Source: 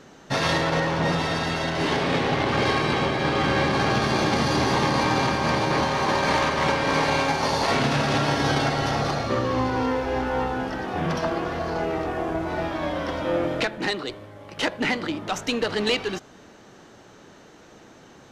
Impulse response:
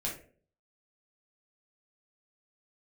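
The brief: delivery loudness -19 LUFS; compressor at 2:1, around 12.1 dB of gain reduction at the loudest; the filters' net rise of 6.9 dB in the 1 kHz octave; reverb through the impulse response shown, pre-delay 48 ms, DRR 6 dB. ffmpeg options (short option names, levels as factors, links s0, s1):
-filter_complex "[0:a]equalizer=f=1000:t=o:g=8.5,acompressor=threshold=0.0141:ratio=2,asplit=2[s0][s1];[1:a]atrim=start_sample=2205,adelay=48[s2];[s1][s2]afir=irnorm=-1:irlink=0,volume=0.355[s3];[s0][s3]amix=inputs=2:normalize=0,volume=3.55"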